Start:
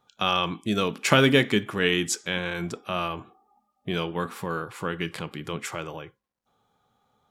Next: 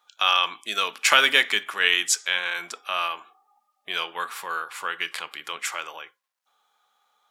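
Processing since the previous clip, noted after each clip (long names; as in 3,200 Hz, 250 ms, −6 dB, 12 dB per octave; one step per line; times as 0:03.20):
high-pass filter 1,100 Hz 12 dB per octave
level +6 dB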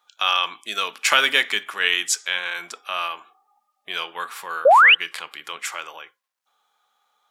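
sound drawn into the spectrogram rise, 0:04.65–0:04.95, 490–3,200 Hz −11 dBFS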